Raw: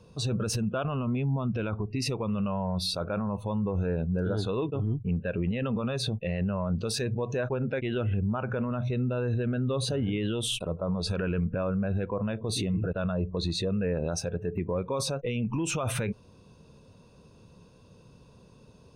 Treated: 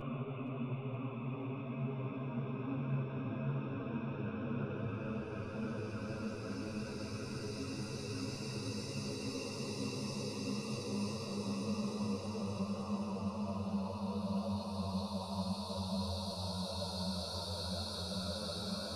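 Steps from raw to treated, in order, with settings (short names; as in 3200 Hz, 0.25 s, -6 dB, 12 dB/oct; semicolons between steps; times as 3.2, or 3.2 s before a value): Paulstretch 10×, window 1.00 s, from 1.1; thinning echo 0.468 s, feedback 68%, level -9 dB; ensemble effect; gain -7 dB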